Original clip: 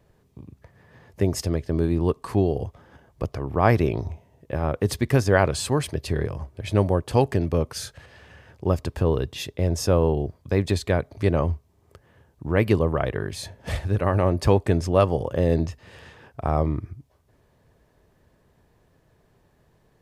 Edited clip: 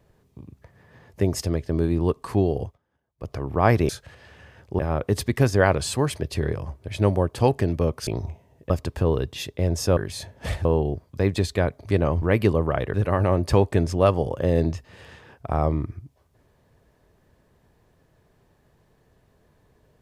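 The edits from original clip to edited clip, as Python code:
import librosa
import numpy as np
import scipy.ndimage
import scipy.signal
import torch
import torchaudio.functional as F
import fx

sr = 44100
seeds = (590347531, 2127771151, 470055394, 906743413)

y = fx.edit(x, sr, fx.fade_down_up(start_s=2.63, length_s=0.7, db=-23.5, fade_s=0.15),
    fx.swap(start_s=3.89, length_s=0.63, other_s=7.8, other_length_s=0.9),
    fx.cut(start_s=11.54, length_s=0.94),
    fx.move(start_s=13.2, length_s=0.68, to_s=9.97), tone=tone)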